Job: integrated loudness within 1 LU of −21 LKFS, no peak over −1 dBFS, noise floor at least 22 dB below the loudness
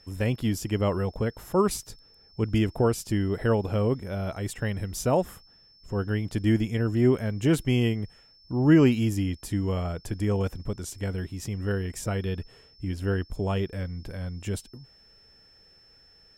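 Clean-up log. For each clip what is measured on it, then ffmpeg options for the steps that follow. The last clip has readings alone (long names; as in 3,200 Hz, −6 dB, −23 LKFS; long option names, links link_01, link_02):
interfering tone 5,300 Hz; level of the tone −55 dBFS; integrated loudness −27.5 LKFS; sample peak −8.0 dBFS; target loudness −21.0 LKFS
→ -af "bandreject=frequency=5300:width=30"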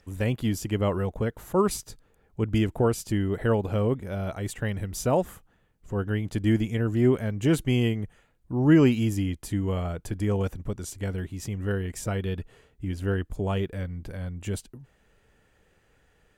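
interfering tone none found; integrated loudness −27.5 LKFS; sample peak −8.0 dBFS; target loudness −21.0 LKFS
→ -af "volume=6.5dB"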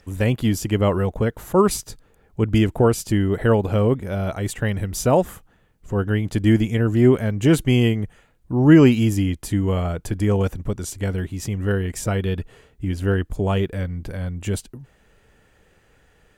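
integrated loudness −21.0 LKFS; sample peak −1.5 dBFS; background noise floor −58 dBFS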